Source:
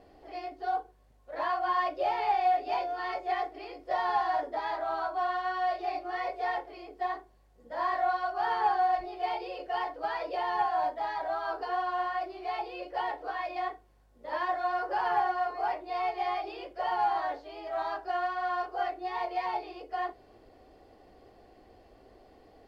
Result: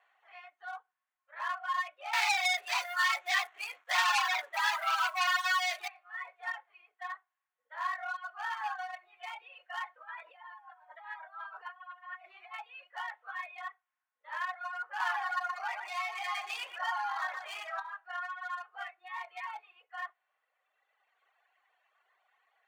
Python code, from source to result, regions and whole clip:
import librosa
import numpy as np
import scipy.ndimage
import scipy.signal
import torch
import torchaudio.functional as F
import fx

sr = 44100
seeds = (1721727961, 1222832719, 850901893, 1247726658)

y = fx.chain(x, sr, fx.leveller(passes=3),
    fx.high_shelf(hz=4200.0, db=5.5), at=(2.13, 5.88))
y = fx.chain(y, sr, fx.high_shelf(hz=4000.0, db=-9.0),
    fx.over_compress(threshold_db=-39.0, ratio=-1.0), at=(9.96, 12.54))
y = fx.chain(y, sr, fx.echo_feedback(ms=122, feedback_pct=38, wet_db=-8),
    fx.env_flatten(amount_pct=70), at=(15.0, 17.8))
y = fx.wiener(y, sr, points=9)
y = fx.dereverb_blind(y, sr, rt60_s=2.0)
y = scipy.signal.sosfilt(scipy.signal.butter(4, 1200.0, 'highpass', fs=sr, output='sos'), y)
y = F.gain(torch.from_numpy(y), 3.0).numpy()